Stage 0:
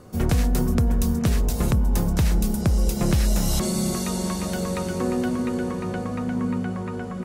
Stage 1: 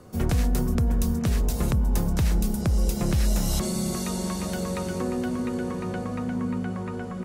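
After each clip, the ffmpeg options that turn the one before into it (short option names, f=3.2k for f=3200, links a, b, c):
-filter_complex "[0:a]acrossover=split=130[a][b];[b]acompressor=threshold=-23dB:ratio=2.5[c];[a][c]amix=inputs=2:normalize=0,volume=-2dB"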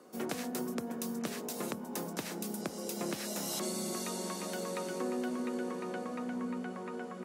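-af "highpass=f=240:w=0.5412,highpass=f=240:w=1.3066,volume=-5.5dB"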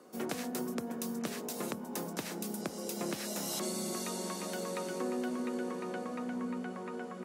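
-af anull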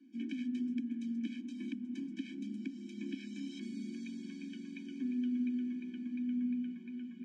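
-filter_complex "[0:a]asplit=3[a][b][c];[a]bandpass=f=270:t=q:w=8,volume=0dB[d];[b]bandpass=f=2.29k:t=q:w=8,volume=-6dB[e];[c]bandpass=f=3.01k:t=q:w=8,volume=-9dB[f];[d][e][f]amix=inputs=3:normalize=0,highpass=f=210:w=0.5412,highpass=f=210:w=1.3066,equalizer=f=210:t=q:w=4:g=6,equalizer=f=400:t=q:w=4:g=-8,equalizer=f=1.2k:t=q:w=4:g=-8,equalizer=f=4.1k:t=q:w=4:g=-4,lowpass=f=7.9k:w=0.5412,lowpass=f=7.9k:w=1.3066,afftfilt=real='re*eq(mod(floor(b*sr/1024/370),2),0)':imag='im*eq(mod(floor(b*sr/1024/370),2),0)':win_size=1024:overlap=0.75,volume=8dB"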